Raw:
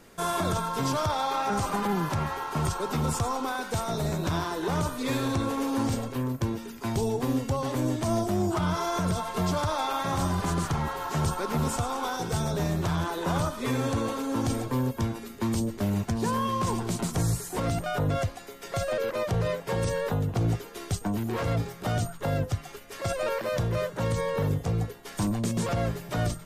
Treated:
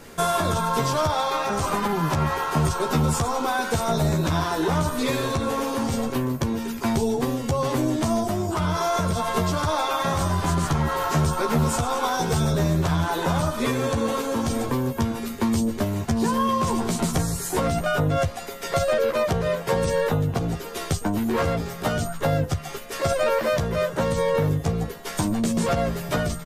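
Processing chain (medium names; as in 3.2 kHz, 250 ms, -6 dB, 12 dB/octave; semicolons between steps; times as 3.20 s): compression, threshold -29 dBFS, peak gain reduction 7 dB; doubling 13 ms -4 dB; trim +8 dB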